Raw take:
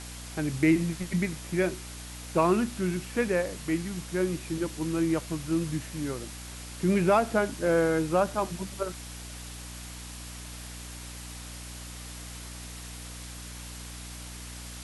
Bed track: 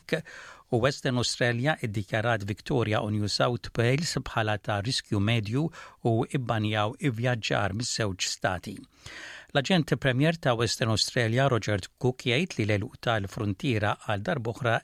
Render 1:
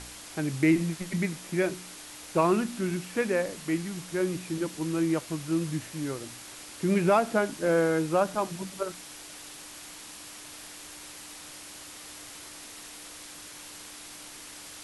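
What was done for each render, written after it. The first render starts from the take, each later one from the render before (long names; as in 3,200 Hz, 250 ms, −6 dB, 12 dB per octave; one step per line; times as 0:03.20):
hum removal 60 Hz, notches 4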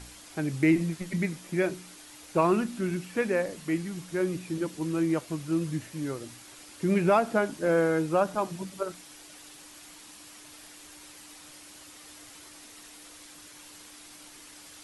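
broadband denoise 6 dB, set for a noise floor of −45 dBFS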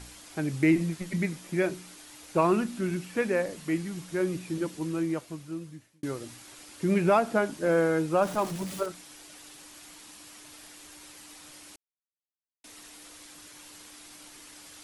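0:04.68–0:06.03: fade out
0:08.22–0:08.86: converter with a step at zero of −36.5 dBFS
0:11.76–0:12.64: silence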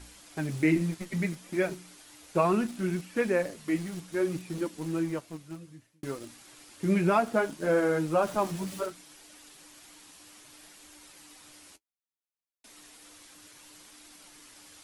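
flanger 0.64 Hz, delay 3 ms, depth 8.8 ms, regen −33%
in parallel at −9 dB: centre clipping without the shift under −37.5 dBFS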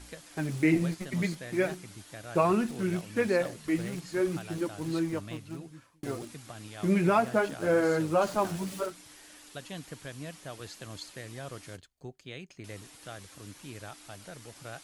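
mix in bed track −18 dB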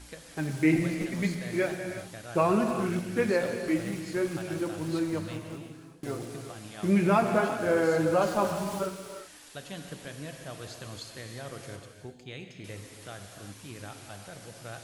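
reverb whose tail is shaped and stops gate 400 ms flat, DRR 4.5 dB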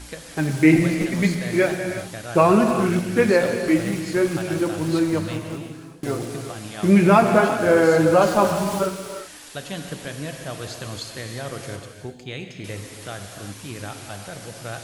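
level +9 dB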